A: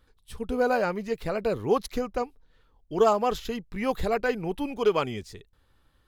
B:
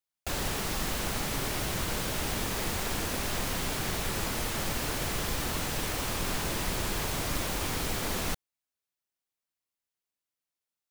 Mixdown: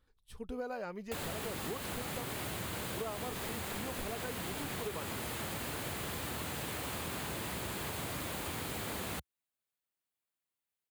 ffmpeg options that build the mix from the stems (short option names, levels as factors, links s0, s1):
-filter_complex "[0:a]volume=0.316[s0];[1:a]highpass=f=68:w=0.5412,highpass=f=68:w=1.3066,equalizer=f=5600:w=3:g=-8.5,adelay=850,volume=0.891[s1];[s0][s1]amix=inputs=2:normalize=0,acompressor=threshold=0.0158:ratio=6"